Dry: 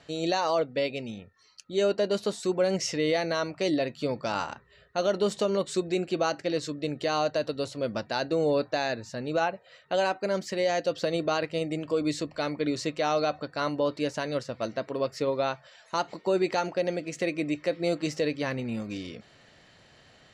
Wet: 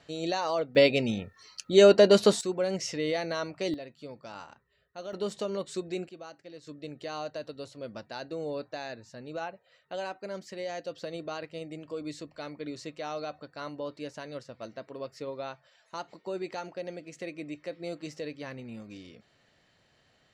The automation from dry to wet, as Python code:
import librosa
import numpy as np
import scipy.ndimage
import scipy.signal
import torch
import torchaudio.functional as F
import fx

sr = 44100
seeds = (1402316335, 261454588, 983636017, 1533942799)

y = fx.gain(x, sr, db=fx.steps((0.0, -3.5), (0.75, 8.0), (2.41, -4.0), (3.74, -14.0), (5.13, -6.5), (6.09, -18.5), (6.67, -10.0)))